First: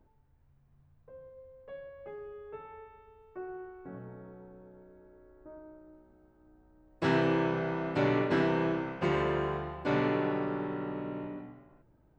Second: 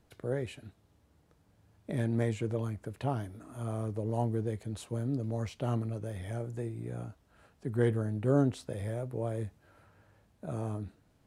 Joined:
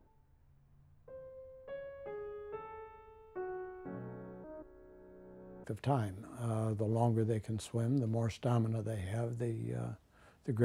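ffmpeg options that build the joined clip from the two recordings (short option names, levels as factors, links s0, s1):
-filter_complex "[0:a]apad=whole_dur=10.64,atrim=end=10.64,asplit=2[s0][s1];[s0]atrim=end=4.442[s2];[s1]atrim=start=4.438:end=5.642,asetpts=PTS-STARTPTS,areverse[s3];[1:a]atrim=start=2.808:end=7.81[s4];[s2][s3]acrossfade=d=0.004:c1=hsin:c2=hsin[s5];[s5][s4]acrossfade=d=0.004:c1=hsin:c2=hsin"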